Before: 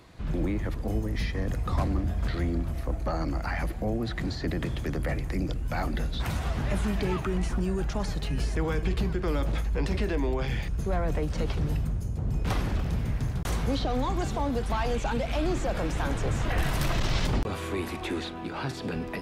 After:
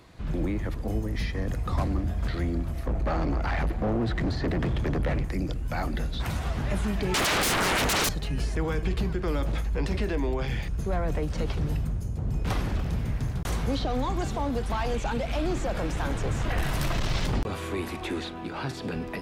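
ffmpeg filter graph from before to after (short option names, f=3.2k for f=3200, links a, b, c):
-filter_complex "[0:a]asettb=1/sr,asplit=3[a][b][c];[a]atrim=end=2.864[d];[b]atrim=start=2.86:end=5.25,asetpts=PTS-STARTPTS,afade=t=in:d=0.004:c=qsin,afade=t=out:st=2.386:d=0.004:c=qsin,acontrast=58,asoftclip=type=hard:threshold=-23dB,lowpass=f=2.4k:p=1[e];[c]atrim=start=5.246[f];[d][e]acrossfade=d=0.004:c1=hsin:c2=qsin[g];[g][f]acrossfade=d=0.004:c1=qsin:c2=hsin,asettb=1/sr,asplit=3[h][i][j];[h]atrim=end=7.144[k];[i]atrim=start=7.14:end=8.09,asetpts=PTS-STARTPTS,afade=t=in:d=0.004:c=qsin,afade=t=out:st=0.946:d=0.004:c=qsin,highpass=f=210:p=1,aeval=exprs='0.0841*sin(PI/2*8.91*val(0)/0.0841)':c=same[l];[j]atrim=start=8.086[m];[k][l]acrossfade=d=0.004:c1=hsin:c2=qsin[n];[n][m]acrossfade=d=0.004:c1=qsin:c2=hsin,asettb=1/sr,asplit=3[o][p][q];[o]atrim=end=14.274[r];[p]atrim=start=14.27:end=17.37,asetpts=PTS-STARTPTS,afade=t=in:d=0.004:c=qsin,afade=t=out:st=3.096:d=0.004:c=qsin,aeval=exprs='val(0)+0.00355*(sin(2*PI*50*n/s)+sin(2*PI*2*50*n/s)/2+sin(2*PI*3*50*n/s)/3+sin(2*PI*4*50*n/s)/4+sin(2*PI*5*50*n/s)/5)':c=same,aeval=exprs='clip(val(0),-1,0.075)':c=same[s];[q]atrim=start=17.366[t];[r][s]acrossfade=d=0.004:c1=hsin:c2=qsin[u];[u][t]acrossfade=d=0.004:c1=qsin:c2=hsin"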